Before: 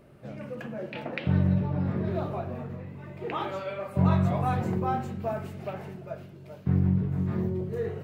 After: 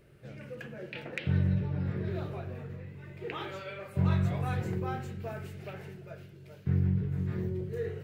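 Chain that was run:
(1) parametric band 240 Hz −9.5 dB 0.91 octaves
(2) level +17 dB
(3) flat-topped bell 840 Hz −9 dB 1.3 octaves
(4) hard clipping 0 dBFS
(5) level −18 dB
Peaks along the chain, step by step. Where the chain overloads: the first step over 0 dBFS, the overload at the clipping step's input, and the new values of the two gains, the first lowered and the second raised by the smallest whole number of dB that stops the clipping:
−13.5, +3.5, +3.5, 0.0, −18.0 dBFS
step 2, 3.5 dB
step 2 +13 dB, step 5 −14 dB

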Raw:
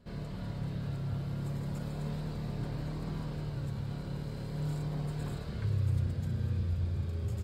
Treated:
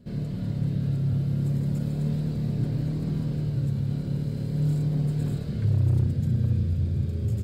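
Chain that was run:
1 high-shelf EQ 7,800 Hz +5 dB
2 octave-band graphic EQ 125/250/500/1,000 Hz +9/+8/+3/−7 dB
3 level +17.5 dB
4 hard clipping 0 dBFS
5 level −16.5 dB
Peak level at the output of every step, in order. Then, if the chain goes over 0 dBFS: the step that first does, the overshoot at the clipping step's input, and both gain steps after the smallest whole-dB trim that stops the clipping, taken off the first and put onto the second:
−21.5, −13.5, +4.0, 0.0, −16.5 dBFS
step 3, 4.0 dB
step 3 +13.5 dB, step 5 −12.5 dB

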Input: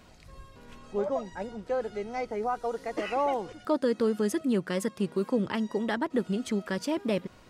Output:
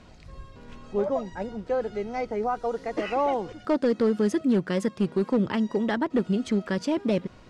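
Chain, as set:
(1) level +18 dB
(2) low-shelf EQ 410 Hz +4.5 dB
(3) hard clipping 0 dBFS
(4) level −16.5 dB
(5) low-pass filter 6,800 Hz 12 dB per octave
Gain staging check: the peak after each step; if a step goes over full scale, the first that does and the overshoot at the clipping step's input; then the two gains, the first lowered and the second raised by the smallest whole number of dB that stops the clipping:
+2.0, +4.0, 0.0, −16.5, −16.5 dBFS
step 1, 4.0 dB
step 1 +14 dB, step 4 −12.5 dB

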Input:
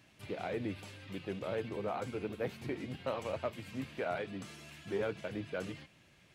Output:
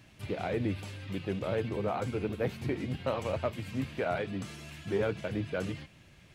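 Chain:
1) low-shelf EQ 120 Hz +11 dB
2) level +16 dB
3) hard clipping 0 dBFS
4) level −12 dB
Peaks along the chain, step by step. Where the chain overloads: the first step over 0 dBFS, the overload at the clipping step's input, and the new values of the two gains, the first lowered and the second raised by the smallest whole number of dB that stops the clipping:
−21.5, −5.5, −5.5, −17.5 dBFS
no step passes full scale

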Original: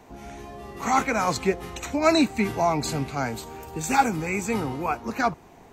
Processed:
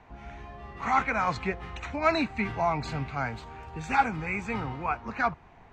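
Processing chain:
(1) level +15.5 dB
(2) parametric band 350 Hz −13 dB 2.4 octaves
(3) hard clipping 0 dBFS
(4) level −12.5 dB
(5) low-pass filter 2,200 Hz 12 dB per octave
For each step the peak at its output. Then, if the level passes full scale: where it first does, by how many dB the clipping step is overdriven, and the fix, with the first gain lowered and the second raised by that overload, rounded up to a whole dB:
+8.5, +4.0, 0.0, −12.5, −12.0 dBFS
step 1, 4.0 dB
step 1 +11.5 dB, step 4 −8.5 dB

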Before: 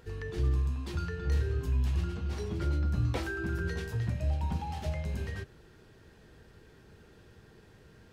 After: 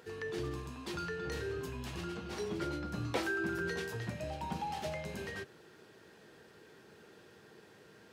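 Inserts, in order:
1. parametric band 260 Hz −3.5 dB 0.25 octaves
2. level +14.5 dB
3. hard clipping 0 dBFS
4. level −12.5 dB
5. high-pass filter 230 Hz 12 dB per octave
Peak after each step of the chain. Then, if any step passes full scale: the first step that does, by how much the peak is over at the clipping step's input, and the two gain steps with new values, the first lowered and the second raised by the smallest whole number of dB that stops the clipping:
−20.0, −5.5, −5.5, −18.0, −21.0 dBFS
no step passes full scale

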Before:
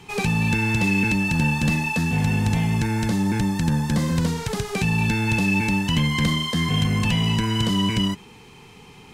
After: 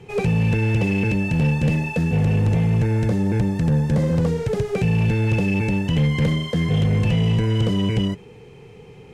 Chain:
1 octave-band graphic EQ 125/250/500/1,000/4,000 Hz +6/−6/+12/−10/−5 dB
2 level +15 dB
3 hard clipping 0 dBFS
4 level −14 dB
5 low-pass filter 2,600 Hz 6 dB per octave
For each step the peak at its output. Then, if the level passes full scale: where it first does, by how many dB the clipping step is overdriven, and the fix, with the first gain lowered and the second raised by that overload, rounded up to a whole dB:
−8.5, +6.5, 0.0, −14.0, −14.0 dBFS
step 2, 6.5 dB
step 2 +8 dB, step 4 −7 dB

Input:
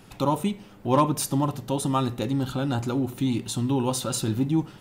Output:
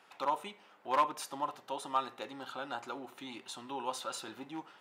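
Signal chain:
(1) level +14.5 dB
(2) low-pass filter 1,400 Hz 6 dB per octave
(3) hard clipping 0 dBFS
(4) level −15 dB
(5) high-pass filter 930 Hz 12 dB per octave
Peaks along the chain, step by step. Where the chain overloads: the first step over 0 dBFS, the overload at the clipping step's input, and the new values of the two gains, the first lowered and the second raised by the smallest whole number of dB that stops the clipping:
+4.0, +3.5, 0.0, −15.0, −16.5 dBFS
step 1, 3.5 dB
step 1 +10.5 dB, step 4 −11 dB

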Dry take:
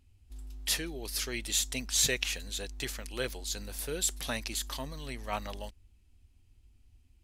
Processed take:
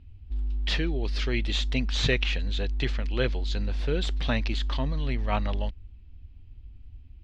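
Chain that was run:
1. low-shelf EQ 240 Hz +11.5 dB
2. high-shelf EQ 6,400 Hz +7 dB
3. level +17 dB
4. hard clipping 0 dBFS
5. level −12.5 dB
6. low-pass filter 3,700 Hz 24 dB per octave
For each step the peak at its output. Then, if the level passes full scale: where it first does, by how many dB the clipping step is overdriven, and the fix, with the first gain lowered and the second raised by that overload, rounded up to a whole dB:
−11.0, −9.0, +8.0, 0.0, −12.5, −11.5 dBFS
step 3, 8.0 dB
step 3 +9 dB, step 5 −4.5 dB

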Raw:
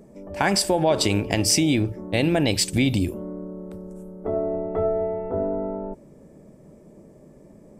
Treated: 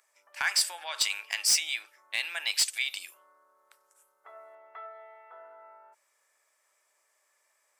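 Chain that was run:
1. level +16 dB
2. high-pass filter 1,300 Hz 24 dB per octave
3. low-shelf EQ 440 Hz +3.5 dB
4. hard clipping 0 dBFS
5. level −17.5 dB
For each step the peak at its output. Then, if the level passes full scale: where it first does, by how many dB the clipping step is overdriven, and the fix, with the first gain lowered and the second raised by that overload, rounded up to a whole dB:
+10.5, +8.0, +8.0, 0.0, −17.5 dBFS
step 1, 8.0 dB
step 1 +8 dB, step 5 −9.5 dB

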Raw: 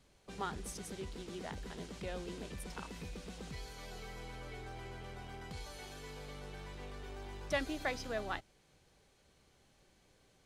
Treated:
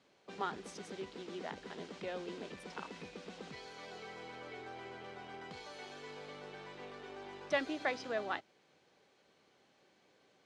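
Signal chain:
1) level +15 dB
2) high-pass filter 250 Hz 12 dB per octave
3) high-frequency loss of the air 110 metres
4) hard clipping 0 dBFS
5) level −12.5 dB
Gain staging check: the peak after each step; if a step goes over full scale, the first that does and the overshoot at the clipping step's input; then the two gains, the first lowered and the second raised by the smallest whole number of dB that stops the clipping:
−6.0, −4.5, −5.5, −5.5, −18.0 dBFS
no step passes full scale

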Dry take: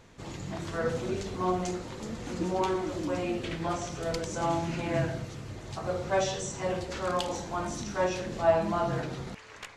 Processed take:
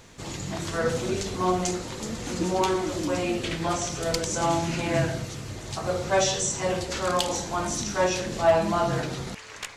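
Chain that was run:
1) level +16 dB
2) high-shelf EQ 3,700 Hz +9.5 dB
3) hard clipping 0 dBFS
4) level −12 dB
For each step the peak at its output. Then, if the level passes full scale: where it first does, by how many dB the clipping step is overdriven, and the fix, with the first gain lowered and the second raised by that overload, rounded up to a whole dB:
+4.5, +5.0, 0.0, −12.0 dBFS
step 1, 5.0 dB
step 1 +11 dB, step 4 −7 dB

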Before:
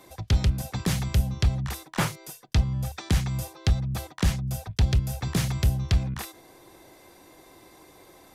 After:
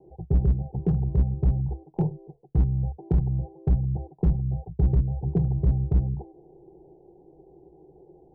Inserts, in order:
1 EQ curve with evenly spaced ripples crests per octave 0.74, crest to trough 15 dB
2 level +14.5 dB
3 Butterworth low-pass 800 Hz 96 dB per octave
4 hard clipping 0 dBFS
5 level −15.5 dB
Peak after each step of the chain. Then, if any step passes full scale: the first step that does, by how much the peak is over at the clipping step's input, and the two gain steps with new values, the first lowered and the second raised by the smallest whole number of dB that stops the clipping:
−7.0, +7.5, +7.5, 0.0, −15.5 dBFS
step 2, 7.5 dB
step 2 +6.5 dB, step 5 −7.5 dB

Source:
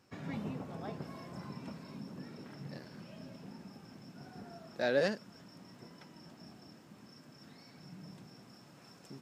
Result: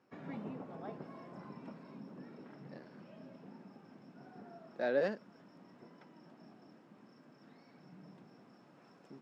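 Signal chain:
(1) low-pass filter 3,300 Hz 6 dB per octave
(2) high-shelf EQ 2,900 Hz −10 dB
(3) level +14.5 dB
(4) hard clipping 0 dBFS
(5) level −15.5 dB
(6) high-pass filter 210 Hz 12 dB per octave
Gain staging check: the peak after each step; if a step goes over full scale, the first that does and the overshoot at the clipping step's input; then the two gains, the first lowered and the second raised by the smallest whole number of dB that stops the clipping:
−18.5, −19.5, −5.0, −5.0, −20.5, −20.0 dBFS
no step passes full scale

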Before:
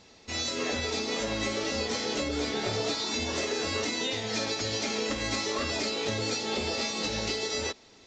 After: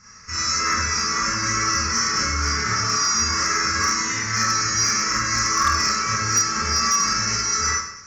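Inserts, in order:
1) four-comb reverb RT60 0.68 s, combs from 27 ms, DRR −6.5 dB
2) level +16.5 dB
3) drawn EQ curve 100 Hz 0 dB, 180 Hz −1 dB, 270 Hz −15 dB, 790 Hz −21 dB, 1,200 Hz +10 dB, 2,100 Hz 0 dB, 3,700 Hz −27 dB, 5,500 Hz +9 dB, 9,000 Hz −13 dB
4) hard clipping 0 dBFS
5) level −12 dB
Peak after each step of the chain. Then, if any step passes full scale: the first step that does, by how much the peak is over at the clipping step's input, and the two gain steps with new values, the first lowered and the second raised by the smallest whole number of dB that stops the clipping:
−10.0, +6.5, +5.5, 0.0, −12.0 dBFS
step 2, 5.5 dB
step 2 +10.5 dB, step 5 −6 dB

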